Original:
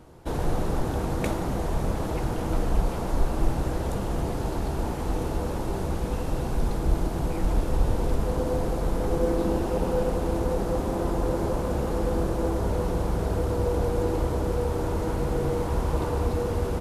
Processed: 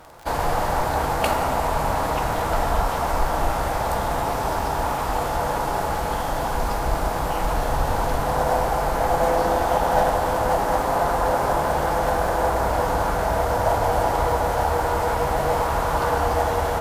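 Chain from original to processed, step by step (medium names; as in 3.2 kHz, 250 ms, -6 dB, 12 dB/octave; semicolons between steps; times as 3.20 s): formant shift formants +3 st; crackle 21 per s -40 dBFS; resonant low shelf 500 Hz -9.5 dB, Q 1.5; on a send: reverberation RT60 4.6 s, pre-delay 4 ms, DRR 6.5 dB; on the sum: trim +8 dB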